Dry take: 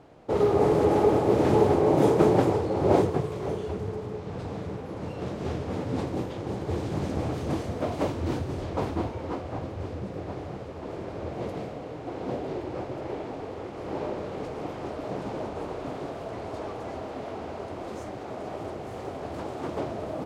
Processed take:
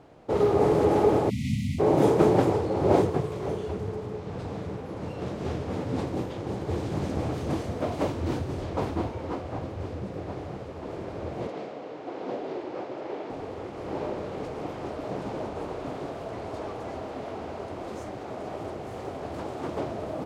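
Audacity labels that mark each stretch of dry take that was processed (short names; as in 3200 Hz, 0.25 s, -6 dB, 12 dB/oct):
1.300000	1.790000	spectral delete 260–1900 Hz
11.470000	13.300000	BPF 260–6100 Hz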